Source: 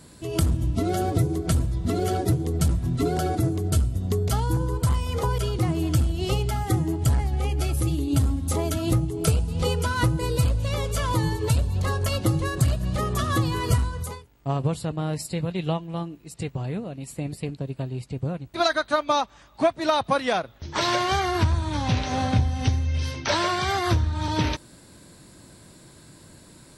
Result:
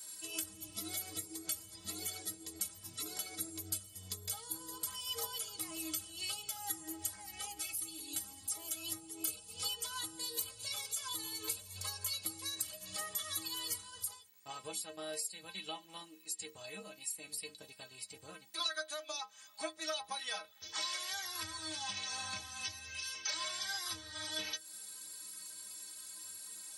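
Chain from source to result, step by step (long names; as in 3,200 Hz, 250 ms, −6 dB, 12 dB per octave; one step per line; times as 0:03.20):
first difference
downward compressor 3 to 1, threshold −46 dBFS, peak gain reduction 15.5 dB
stiff-string resonator 94 Hz, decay 0.36 s, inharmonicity 0.03
level +16.5 dB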